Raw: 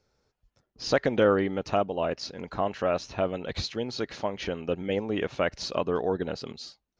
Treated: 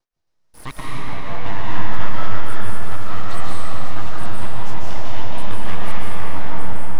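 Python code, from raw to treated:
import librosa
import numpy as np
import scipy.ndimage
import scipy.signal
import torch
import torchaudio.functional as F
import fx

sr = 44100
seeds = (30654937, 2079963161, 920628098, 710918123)

p1 = fx.block_reorder(x, sr, ms=269.0, group=2)
p2 = fx.highpass(p1, sr, hz=100.0, slope=6)
p3 = fx.rider(p2, sr, range_db=5, speed_s=0.5)
p4 = p2 + F.gain(torch.from_numpy(p3), 0.0).numpy()
p5 = np.abs(p4)
p6 = fx.rev_freeverb(p5, sr, rt60_s=4.8, hf_ratio=0.7, predelay_ms=105, drr_db=-8.0)
y = F.gain(torch.from_numpy(p6), -11.0).numpy()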